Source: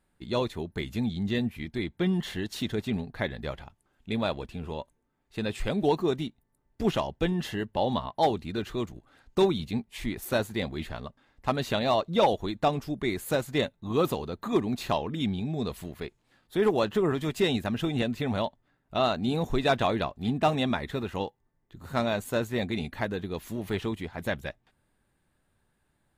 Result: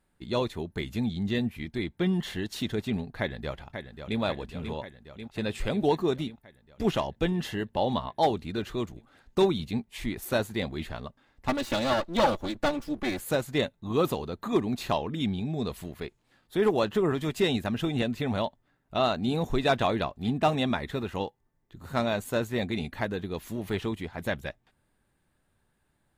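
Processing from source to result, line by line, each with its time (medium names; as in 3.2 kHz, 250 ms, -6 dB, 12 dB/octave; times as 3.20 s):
3.19–4.19 s: echo throw 540 ms, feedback 70%, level -8 dB
11.48–13.20 s: comb filter that takes the minimum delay 3.5 ms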